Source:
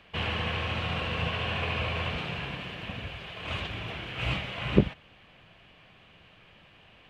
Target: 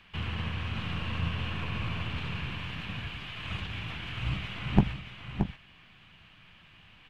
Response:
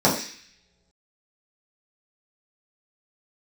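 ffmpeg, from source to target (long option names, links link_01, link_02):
-filter_complex "[0:a]acrossover=split=320|820[link_01][link_02][link_03];[link_02]aeval=exprs='abs(val(0))':channel_layout=same[link_04];[link_03]alimiter=level_in=8.5dB:limit=-24dB:level=0:latency=1:release=90,volume=-8.5dB[link_05];[link_01][link_04][link_05]amix=inputs=3:normalize=0,aecho=1:1:625:0.447"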